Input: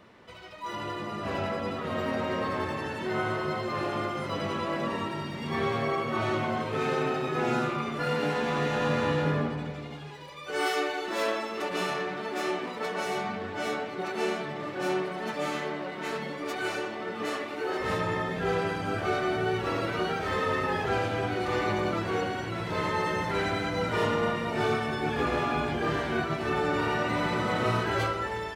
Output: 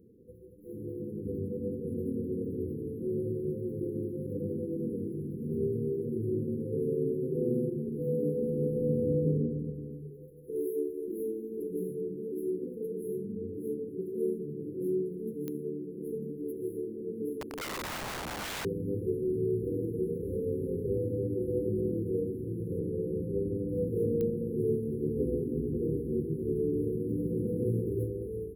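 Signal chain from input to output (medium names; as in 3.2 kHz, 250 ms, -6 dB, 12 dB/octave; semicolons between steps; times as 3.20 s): FFT band-reject 520–10000 Hz; 17.41–18.65 s: integer overflow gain 32.5 dB; 22.79–23.69 s: treble shelf 9.6 kHz -9.5 dB; clicks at 15.48/24.21 s, -23 dBFS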